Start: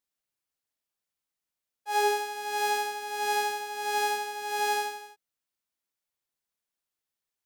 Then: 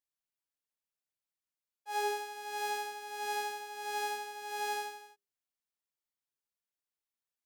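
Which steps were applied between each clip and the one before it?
hum notches 50/100/150/200/250/300/350/400 Hz; trim -8 dB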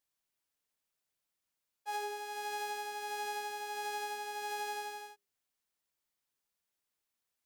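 compression 10:1, threshold -42 dBFS, peak gain reduction 13.5 dB; trim +6 dB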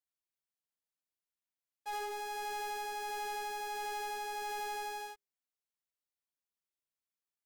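waveshaping leveller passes 3; trim -5.5 dB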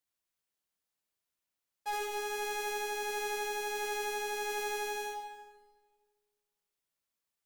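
reverberation RT60 1.5 s, pre-delay 49 ms, DRR 5 dB; trim +4.5 dB

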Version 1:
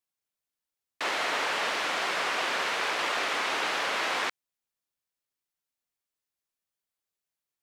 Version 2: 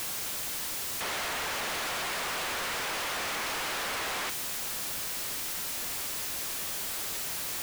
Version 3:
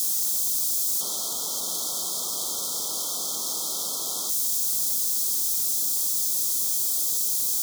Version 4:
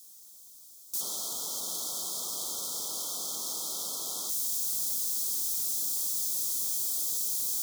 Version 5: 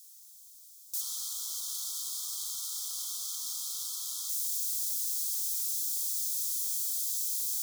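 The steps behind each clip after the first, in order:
one-bit comparator
high-pass 140 Hz 24 dB/octave; FFT band-reject 1.4–3.1 kHz; FFT filter 300 Hz 0 dB, 1.9 kHz -11 dB, 6.2 kHz +11 dB
gate with hold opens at -17 dBFS; trim -6 dB
Bessel high-pass 1.8 kHz, order 8; trim -1.5 dB

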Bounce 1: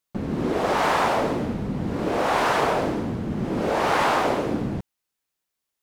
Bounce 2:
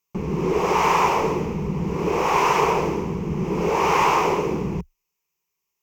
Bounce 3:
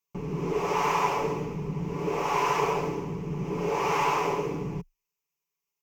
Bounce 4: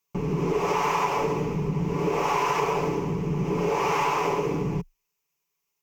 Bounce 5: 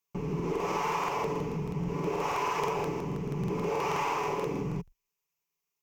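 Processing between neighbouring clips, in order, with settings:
rippled EQ curve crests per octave 0.77, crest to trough 13 dB
comb 7 ms, depth 53%; trim -8 dB
compression 4:1, threshold -28 dBFS, peak gain reduction 7.5 dB; trim +6.5 dB
crackling interface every 0.16 s, samples 2048, repeat, from 0.35 s; trim -6 dB

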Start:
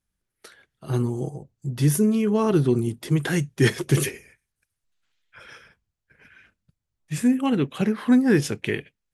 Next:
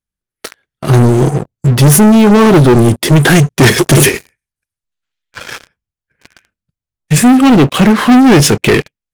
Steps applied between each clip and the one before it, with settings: waveshaping leveller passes 5; trim +4.5 dB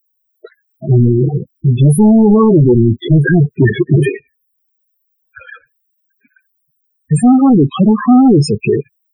added noise blue -49 dBFS; loudest bins only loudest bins 8; trim -1.5 dB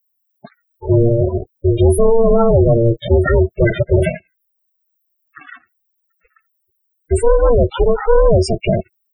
ring modulator 230 Hz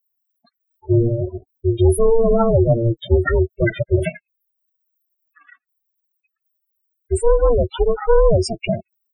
expander on every frequency bin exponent 2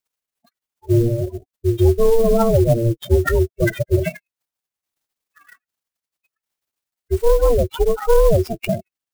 low-pass that closes with the level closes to 1.8 kHz, closed at -10 dBFS; sampling jitter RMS 0.026 ms

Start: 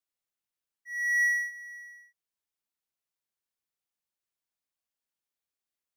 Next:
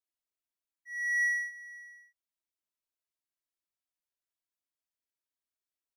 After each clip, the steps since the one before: comb 3.1 ms, depth 75%; trim -8 dB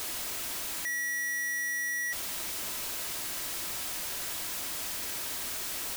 one-bit comparator; trim +8.5 dB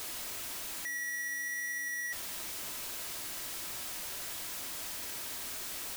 flange 1.1 Hz, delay 6.8 ms, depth 3.9 ms, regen +85%

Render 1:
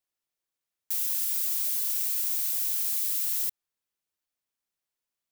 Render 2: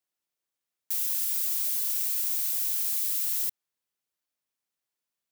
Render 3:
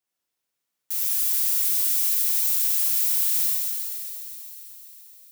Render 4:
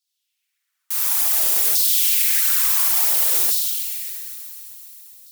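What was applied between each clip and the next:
high-pass 88 Hz
feedback echo behind a high-pass 131 ms, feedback 83%, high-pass 1.7 kHz, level -14 dB; plate-style reverb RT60 2.4 s, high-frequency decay 1×, DRR -4.5 dB
Chebyshev shaper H 2 -10 dB, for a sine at -9.5 dBFS; LFO high-pass saw down 0.57 Hz 360–4400 Hz; phaser 1.6 Hz, delay 3 ms, feedback 34%; trim +4.5 dB

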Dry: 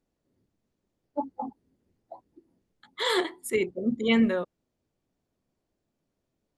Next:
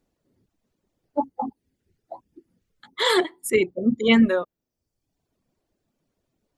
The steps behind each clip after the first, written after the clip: reverb removal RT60 0.82 s; trim +6.5 dB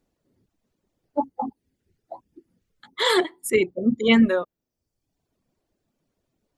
no audible change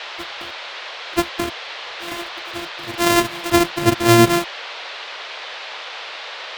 sorted samples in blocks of 128 samples; reverse echo 985 ms -17 dB; band noise 470–4000 Hz -37 dBFS; trim +4.5 dB

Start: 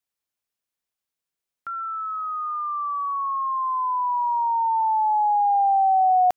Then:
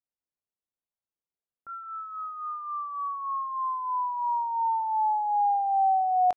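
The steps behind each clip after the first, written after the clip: doubling 22 ms -11 dB; level-controlled noise filter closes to 860 Hz, open at -10 dBFS; trim -5.5 dB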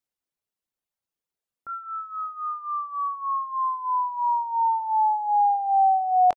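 reverb removal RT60 0.78 s; trim +6 dB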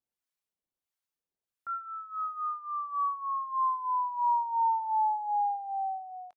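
fade out at the end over 1.69 s; harmonic tremolo 1.5 Hz, crossover 870 Hz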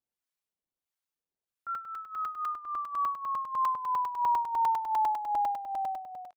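crackling interface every 0.10 s, samples 128, zero

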